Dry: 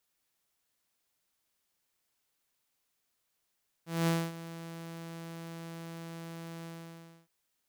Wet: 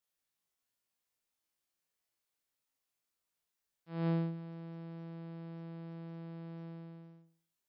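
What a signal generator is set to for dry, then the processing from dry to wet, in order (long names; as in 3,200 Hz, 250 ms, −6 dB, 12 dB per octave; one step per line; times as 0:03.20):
note with an ADSR envelope saw 166 Hz, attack 212 ms, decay 243 ms, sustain −16.5 dB, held 2.78 s, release 635 ms −22.5 dBFS
gate on every frequency bin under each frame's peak −30 dB strong
tuned comb filter 55 Hz, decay 0.48 s, harmonics all, mix 90%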